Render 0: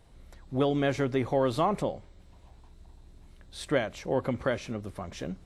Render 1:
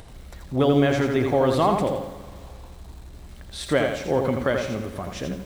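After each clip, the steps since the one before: in parallel at -2 dB: upward compressor, threshold -33 dBFS; on the sum: reverb RT60 2.3 s, pre-delay 31 ms, DRR 13 dB; lo-fi delay 84 ms, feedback 35%, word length 8-bit, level -5 dB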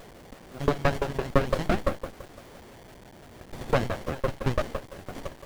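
LFO high-pass saw up 5.9 Hz 490–5000 Hz; requantised 8-bit, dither none; running maximum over 33 samples

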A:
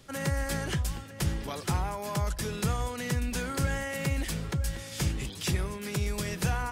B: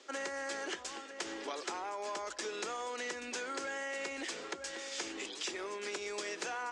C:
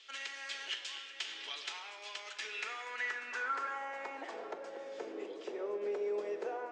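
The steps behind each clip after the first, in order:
elliptic band-pass 330–7200 Hz, stop band 40 dB; compressor, threshold -37 dBFS, peak gain reduction 7.5 dB; gain +1 dB
band-pass sweep 3100 Hz -> 510 Hz, 2.12–4.89; reverb RT60 1.9 s, pre-delay 5 ms, DRR 4.5 dB; gain +6.5 dB

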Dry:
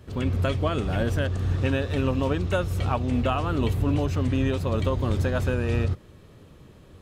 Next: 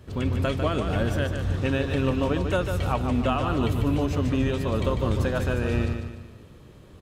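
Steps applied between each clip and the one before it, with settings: feedback echo 0.148 s, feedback 42%, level -7 dB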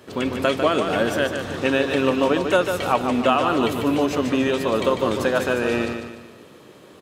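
HPF 290 Hz 12 dB/oct; gain +8 dB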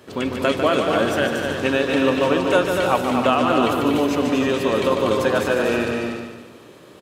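tapped delay 0.24/0.313 s -5.5/-8.5 dB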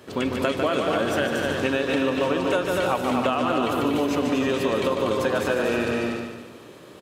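compressor, threshold -19 dBFS, peak gain reduction 7.5 dB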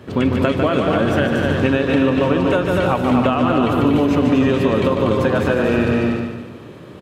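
tone controls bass +10 dB, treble -9 dB; gain +4.5 dB

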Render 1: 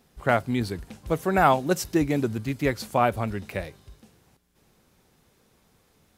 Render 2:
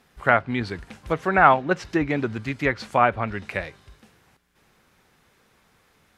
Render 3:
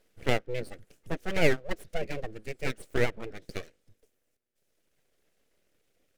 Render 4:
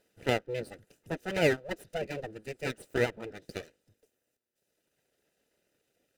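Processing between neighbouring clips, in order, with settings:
bell 1700 Hz +9.5 dB 2.1 oct; treble ducked by the level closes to 2700 Hz, closed at -16.5 dBFS; gain -1.5 dB
reverb removal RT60 2 s; full-wave rectifier; graphic EQ 500/1000/4000 Hz +9/-12/-4 dB; gain -5.5 dB
notch comb 1100 Hz

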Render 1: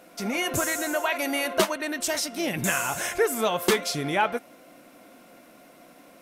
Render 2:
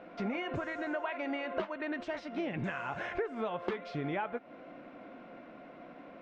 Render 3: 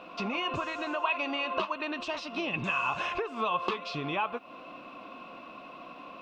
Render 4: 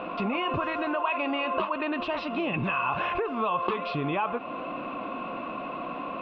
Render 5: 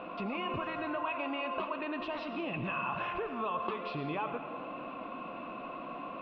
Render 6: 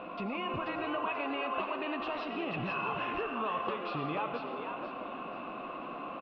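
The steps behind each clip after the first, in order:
compressor 10:1, threshold -33 dBFS, peak gain reduction 16.5 dB; Bessel low-pass 2000 Hz, order 4; gain +2 dB
resonant high shelf 2800 Hz +10 dB, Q 1.5; small resonant body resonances 1100/2600 Hz, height 18 dB, ringing for 20 ms
air absorption 430 m; fast leveller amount 50%; gain +3 dB
reverb RT60 1.7 s, pre-delay 55 ms, DRR 8 dB; gain -8 dB
frequency-shifting echo 0.485 s, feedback 32%, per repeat +110 Hz, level -6.5 dB

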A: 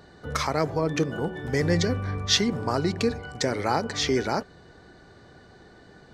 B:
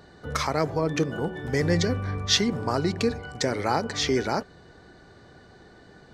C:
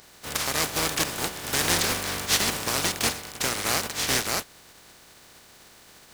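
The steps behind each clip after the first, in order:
nothing audible
spectral contrast lowered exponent 0.2; Doppler distortion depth 0.31 ms

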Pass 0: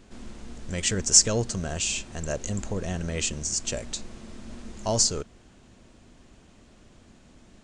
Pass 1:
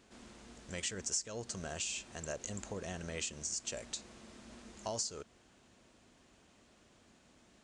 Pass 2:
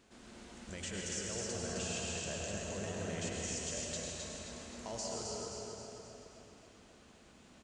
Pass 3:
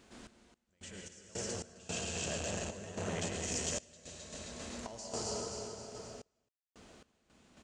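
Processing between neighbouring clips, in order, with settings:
HPF 43 Hz; low shelf 280 Hz -9.5 dB; compressor 4:1, threshold -30 dBFS, peak gain reduction 15.5 dB; gain -6 dB
limiter -31.5 dBFS, peak gain reduction 9.5 dB; feedback echo 0.264 s, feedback 51%, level -5 dB; reverb RT60 3.2 s, pre-delay 92 ms, DRR -2.5 dB; gain -1.5 dB
random-step tremolo 3.7 Hz, depth 100%; core saturation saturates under 640 Hz; gain +5.5 dB

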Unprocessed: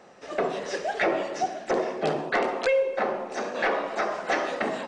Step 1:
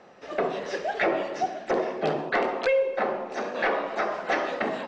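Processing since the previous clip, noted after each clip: LPF 4800 Hz 12 dB/oct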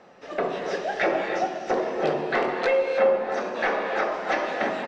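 doubler 22 ms -13 dB; non-linear reverb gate 0.35 s rising, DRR 4 dB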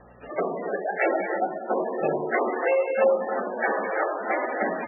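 buzz 60 Hz, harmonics 4, -55 dBFS -2 dB/oct; MP3 8 kbps 22050 Hz

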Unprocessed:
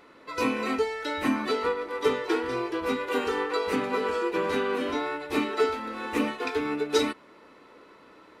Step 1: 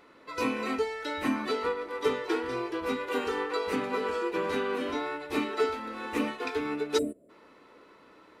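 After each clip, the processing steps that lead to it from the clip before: spectral gain 6.98–7.3, 720–7200 Hz -29 dB; gain -3 dB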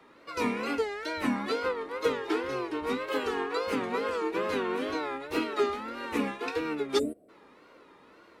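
wow and flutter 140 cents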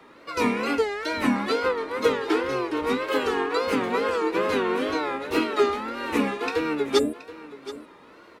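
echo 0.725 s -16 dB; gain +6 dB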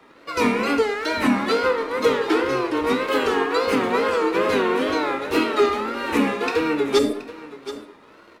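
sample leveller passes 1; on a send at -8.5 dB: reverb RT60 0.65 s, pre-delay 4 ms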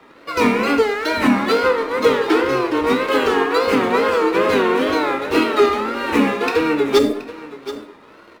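median filter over 5 samples; gain +4 dB

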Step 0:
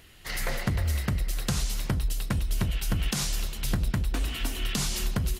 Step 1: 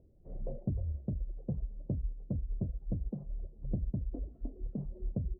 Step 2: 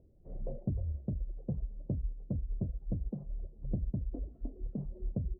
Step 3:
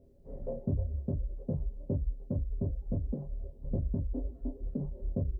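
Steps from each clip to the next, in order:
Chebyshev low-pass 590 Hz, order 4; reverb removal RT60 2 s; gain -5 dB
nothing audible
reverb, pre-delay 3 ms, DRR -4.5 dB

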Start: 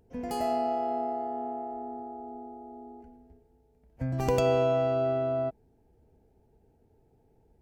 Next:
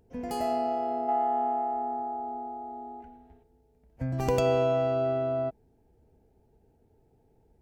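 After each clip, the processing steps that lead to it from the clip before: spectral gain 1.09–3.43, 680–4100 Hz +9 dB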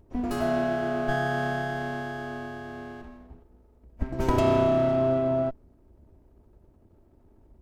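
minimum comb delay 3.1 ms; low shelf 400 Hz +11.5 dB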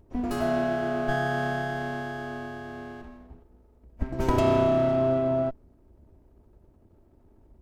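nothing audible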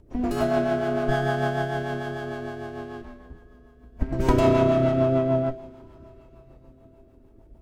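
two-slope reverb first 0.42 s, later 4.9 s, from -17 dB, DRR 10.5 dB; rotary speaker horn 6.7 Hz; gain +5 dB

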